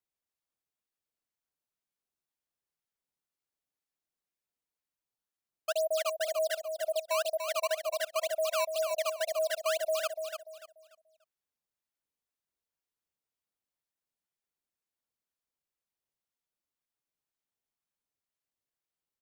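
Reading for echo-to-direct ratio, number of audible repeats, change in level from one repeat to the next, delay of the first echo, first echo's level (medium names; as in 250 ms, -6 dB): -6.5 dB, 3, -11.0 dB, 292 ms, -7.0 dB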